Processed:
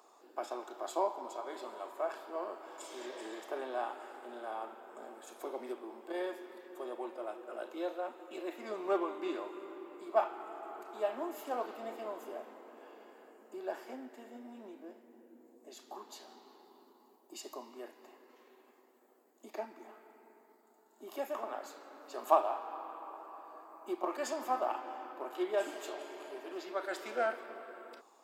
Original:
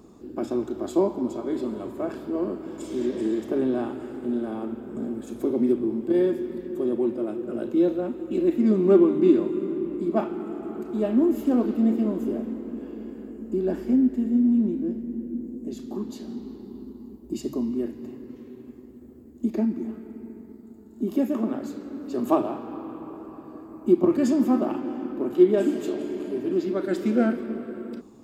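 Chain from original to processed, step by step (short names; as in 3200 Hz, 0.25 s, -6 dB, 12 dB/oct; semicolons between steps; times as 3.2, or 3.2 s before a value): ladder high-pass 620 Hz, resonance 35%; gain +4 dB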